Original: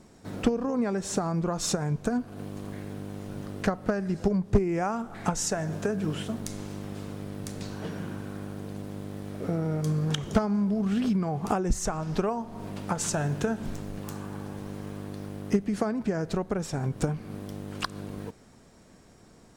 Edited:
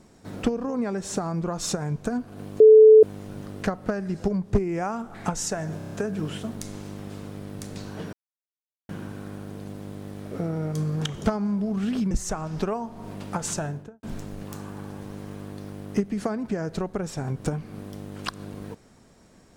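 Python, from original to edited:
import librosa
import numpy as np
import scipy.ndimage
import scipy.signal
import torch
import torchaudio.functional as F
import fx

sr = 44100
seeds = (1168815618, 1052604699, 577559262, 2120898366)

y = fx.studio_fade_out(x, sr, start_s=13.06, length_s=0.53)
y = fx.edit(y, sr, fx.bleep(start_s=2.6, length_s=0.43, hz=435.0, db=-7.5),
    fx.stutter(start_s=5.77, slice_s=0.03, count=6),
    fx.insert_silence(at_s=7.98, length_s=0.76),
    fx.cut(start_s=11.2, length_s=0.47), tone=tone)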